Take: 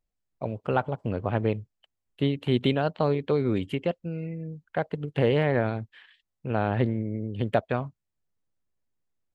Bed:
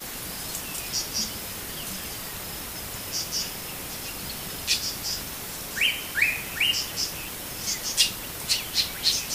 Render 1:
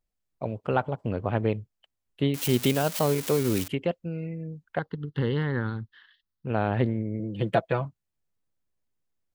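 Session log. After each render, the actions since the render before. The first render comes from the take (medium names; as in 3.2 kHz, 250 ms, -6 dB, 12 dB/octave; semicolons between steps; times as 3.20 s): 2.34–3.68 s: zero-crossing glitches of -19.5 dBFS; 4.79–6.47 s: static phaser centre 2.4 kHz, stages 6; 7.19–7.85 s: comb 6 ms, depth 71%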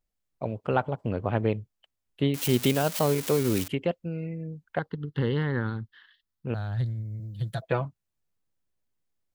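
6.54–7.62 s: FFT filter 140 Hz 0 dB, 230 Hz -17 dB, 450 Hz -21 dB, 690 Hz -14 dB, 1 kHz -16 dB, 1.6 kHz -8 dB, 2.6 kHz -20 dB, 3.8 kHz +2 dB, 8.1 kHz +5 dB, 14 kHz +13 dB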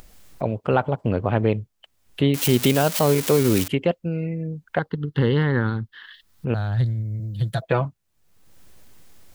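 in parallel at +2 dB: peak limiter -16.5 dBFS, peak gain reduction 7 dB; on the sum: upward compressor, threshold -26 dBFS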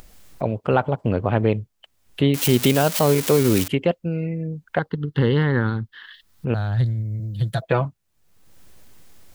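trim +1 dB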